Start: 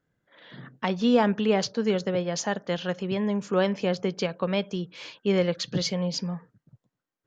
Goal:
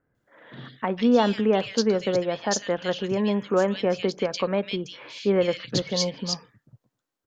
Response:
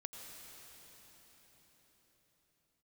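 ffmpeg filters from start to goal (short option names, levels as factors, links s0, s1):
-filter_complex "[0:a]equalizer=f=170:t=o:w=0.29:g=-9,asplit=2[s0][s1];[s1]alimiter=limit=0.133:level=0:latency=1:release=268,volume=0.944[s2];[s0][s2]amix=inputs=2:normalize=0,acrossover=split=2200[s3][s4];[s4]adelay=150[s5];[s3][s5]amix=inputs=2:normalize=0,volume=0.841"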